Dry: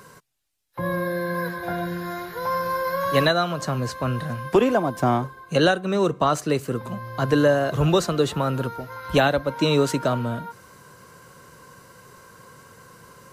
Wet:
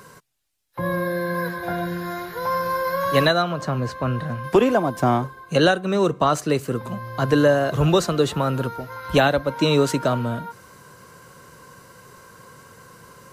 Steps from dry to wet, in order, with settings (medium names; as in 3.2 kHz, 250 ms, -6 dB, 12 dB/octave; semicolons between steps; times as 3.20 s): 3.42–4.44 s: peaking EQ 11 kHz -9.5 dB 2.2 oct; trim +1.5 dB